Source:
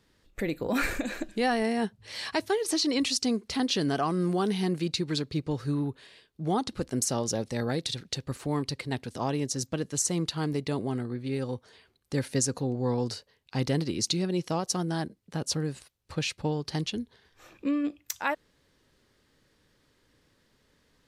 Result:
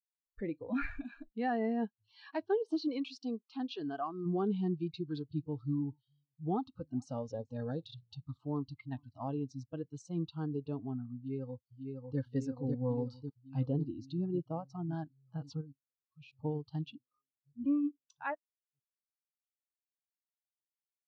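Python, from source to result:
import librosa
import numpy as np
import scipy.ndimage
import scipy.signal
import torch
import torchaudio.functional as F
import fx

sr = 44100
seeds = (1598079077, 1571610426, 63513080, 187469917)

y = fx.peak_eq(x, sr, hz=510.0, db=-4.5, octaves=0.77, at=(0.65, 1.51))
y = fx.low_shelf(y, sr, hz=240.0, db=-9.0, at=(2.88, 4.26))
y = fx.echo_single(y, sr, ms=432, db=-20.5, at=(4.86, 9.64))
y = fx.echo_throw(y, sr, start_s=11.16, length_s=1.03, ms=550, feedback_pct=80, wet_db=-2.5)
y = fx.high_shelf(y, sr, hz=7500.0, db=7.5, at=(12.69, 13.14))
y = fx.high_shelf(y, sr, hz=2100.0, db=-7.0, at=(13.66, 14.93))
y = fx.level_steps(y, sr, step_db=19, at=(15.61, 16.33))
y = fx.edit(y, sr, fx.reverse_span(start_s=16.95, length_s=0.71), tone=tone)
y = fx.noise_reduce_blind(y, sr, reduce_db=23)
y = scipy.signal.sosfilt(scipy.signal.butter(2, 3400.0, 'lowpass', fs=sr, output='sos'), y)
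y = fx.spectral_expand(y, sr, expansion=1.5)
y = F.gain(torch.from_numpy(y), -7.0).numpy()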